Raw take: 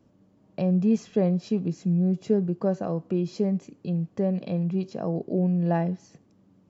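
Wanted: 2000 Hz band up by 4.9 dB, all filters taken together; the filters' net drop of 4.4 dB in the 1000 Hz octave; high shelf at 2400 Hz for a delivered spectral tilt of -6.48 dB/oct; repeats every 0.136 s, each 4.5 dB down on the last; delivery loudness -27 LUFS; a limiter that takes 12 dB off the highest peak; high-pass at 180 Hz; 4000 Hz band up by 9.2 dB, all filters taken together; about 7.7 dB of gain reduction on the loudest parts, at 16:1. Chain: HPF 180 Hz; bell 1000 Hz -9 dB; bell 2000 Hz +4 dB; high shelf 2400 Hz +8 dB; bell 4000 Hz +3.5 dB; compressor 16:1, threshold -26 dBFS; limiter -29.5 dBFS; feedback echo 0.136 s, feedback 60%, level -4.5 dB; gain +9 dB

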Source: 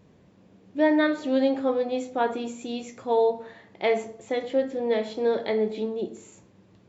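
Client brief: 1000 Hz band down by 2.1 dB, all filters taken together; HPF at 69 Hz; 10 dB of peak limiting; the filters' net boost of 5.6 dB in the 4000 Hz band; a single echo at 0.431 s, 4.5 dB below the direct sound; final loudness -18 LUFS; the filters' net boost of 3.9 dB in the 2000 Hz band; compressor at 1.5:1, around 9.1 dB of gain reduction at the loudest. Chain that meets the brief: HPF 69 Hz; bell 1000 Hz -4 dB; bell 2000 Hz +4.5 dB; bell 4000 Hz +5.5 dB; compressor 1.5:1, threshold -44 dBFS; limiter -28 dBFS; echo 0.431 s -4.5 dB; gain +18.5 dB

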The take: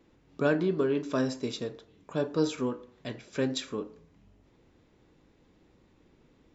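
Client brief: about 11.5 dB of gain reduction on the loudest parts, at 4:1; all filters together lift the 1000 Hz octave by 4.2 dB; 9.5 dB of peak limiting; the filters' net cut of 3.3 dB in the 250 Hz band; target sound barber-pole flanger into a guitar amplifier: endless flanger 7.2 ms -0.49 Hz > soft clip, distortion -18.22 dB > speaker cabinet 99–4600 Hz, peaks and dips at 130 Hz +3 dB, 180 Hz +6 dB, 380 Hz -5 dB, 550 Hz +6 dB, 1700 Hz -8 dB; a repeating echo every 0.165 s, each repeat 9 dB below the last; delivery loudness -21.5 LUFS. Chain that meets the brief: bell 250 Hz -5 dB; bell 1000 Hz +6 dB; compressor 4:1, threshold -34 dBFS; limiter -30.5 dBFS; feedback echo 0.165 s, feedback 35%, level -9 dB; endless flanger 7.2 ms -0.49 Hz; soft clip -34.5 dBFS; speaker cabinet 99–4600 Hz, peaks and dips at 130 Hz +3 dB, 180 Hz +6 dB, 380 Hz -5 dB, 550 Hz +6 dB, 1700 Hz -8 dB; gain +24 dB

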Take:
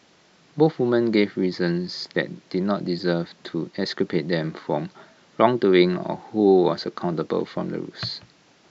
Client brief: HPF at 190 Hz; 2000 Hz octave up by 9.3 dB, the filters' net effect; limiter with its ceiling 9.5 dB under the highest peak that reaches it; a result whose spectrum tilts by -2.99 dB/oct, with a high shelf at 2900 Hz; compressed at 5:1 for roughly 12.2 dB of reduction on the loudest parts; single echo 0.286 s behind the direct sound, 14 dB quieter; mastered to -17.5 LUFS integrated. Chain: HPF 190 Hz; bell 2000 Hz +8.5 dB; high shelf 2900 Hz +6 dB; compressor 5:1, threshold -23 dBFS; limiter -19 dBFS; echo 0.286 s -14 dB; gain +13 dB

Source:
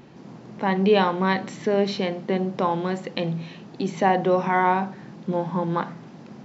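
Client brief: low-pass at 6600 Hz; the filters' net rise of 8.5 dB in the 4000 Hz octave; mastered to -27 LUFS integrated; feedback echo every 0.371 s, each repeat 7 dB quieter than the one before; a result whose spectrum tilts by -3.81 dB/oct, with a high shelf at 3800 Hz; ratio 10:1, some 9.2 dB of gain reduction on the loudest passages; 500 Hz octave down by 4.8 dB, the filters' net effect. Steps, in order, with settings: LPF 6600 Hz; bell 500 Hz -6.5 dB; high shelf 3800 Hz +9 dB; bell 4000 Hz +6 dB; compressor 10:1, threshold -24 dBFS; feedback echo 0.371 s, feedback 45%, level -7 dB; gain +2.5 dB

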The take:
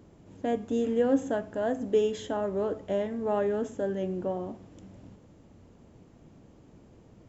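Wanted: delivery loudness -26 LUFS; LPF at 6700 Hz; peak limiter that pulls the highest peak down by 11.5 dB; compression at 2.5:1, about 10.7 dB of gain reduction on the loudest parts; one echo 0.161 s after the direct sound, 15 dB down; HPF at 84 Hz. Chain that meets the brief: HPF 84 Hz; LPF 6700 Hz; compressor 2.5:1, threshold -36 dBFS; limiter -35 dBFS; echo 0.161 s -15 dB; gain +17.5 dB

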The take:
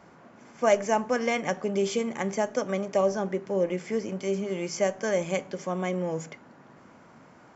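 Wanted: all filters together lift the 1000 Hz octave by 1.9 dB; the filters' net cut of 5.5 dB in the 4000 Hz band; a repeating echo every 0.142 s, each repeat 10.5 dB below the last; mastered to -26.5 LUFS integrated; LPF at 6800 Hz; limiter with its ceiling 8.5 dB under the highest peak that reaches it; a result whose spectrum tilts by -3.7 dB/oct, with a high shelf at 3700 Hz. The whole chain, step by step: LPF 6800 Hz; bell 1000 Hz +3 dB; high shelf 3700 Hz -4 dB; bell 4000 Hz -5 dB; limiter -18.5 dBFS; feedback echo 0.142 s, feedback 30%, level -10.5 dB; gain +3 dB

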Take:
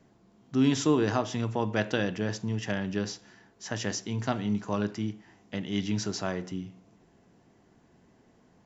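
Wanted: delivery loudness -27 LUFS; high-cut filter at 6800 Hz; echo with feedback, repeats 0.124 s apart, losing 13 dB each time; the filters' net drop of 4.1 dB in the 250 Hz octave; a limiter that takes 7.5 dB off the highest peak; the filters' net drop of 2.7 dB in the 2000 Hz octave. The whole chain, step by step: LPF 6800 Hz; bell 250 Hz -5 dB; bell 2000 Hz -3.5 dB; limiter -20.5 dBFS; feedback echo 0.124 s, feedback 22%, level -13 dB; gain +7.5 dB

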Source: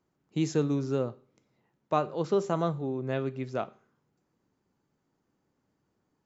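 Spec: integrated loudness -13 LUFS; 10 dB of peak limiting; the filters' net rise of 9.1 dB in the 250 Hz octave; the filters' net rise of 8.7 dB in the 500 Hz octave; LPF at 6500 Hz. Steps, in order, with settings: LPF 6500 Hz; bell 250 Hz +9 dB; bell 500 Hz +8 dB; gain +14.5 dB; limiter -2.5 dBFS

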